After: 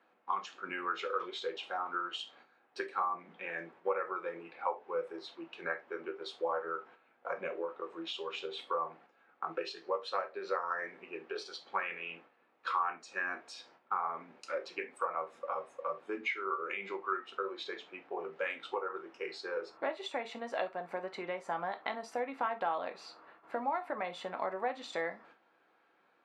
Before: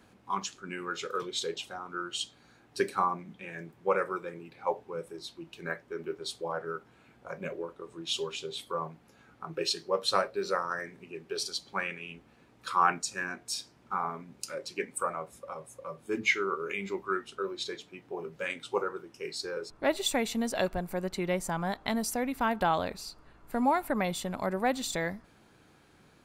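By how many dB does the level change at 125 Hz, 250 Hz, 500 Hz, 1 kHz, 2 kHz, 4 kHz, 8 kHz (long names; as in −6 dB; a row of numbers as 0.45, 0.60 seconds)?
−18.5, −11.5, −4.5, −3.5, −4.0, −8.5, −20.0 decibels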